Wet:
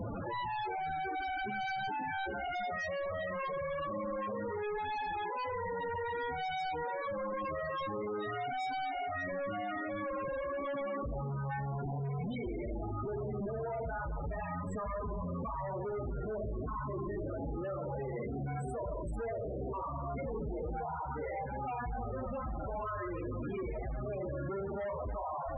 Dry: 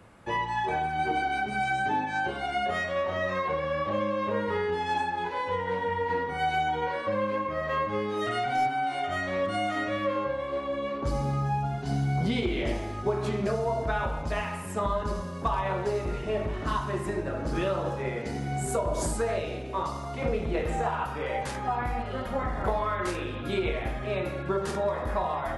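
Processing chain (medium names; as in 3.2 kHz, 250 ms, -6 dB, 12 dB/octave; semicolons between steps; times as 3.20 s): one-bit comparator; thinning echo 650 ms, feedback 41%, high-pass 970 Hz, level -18.5 dB; loudest bins only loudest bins 16; trim -6 dB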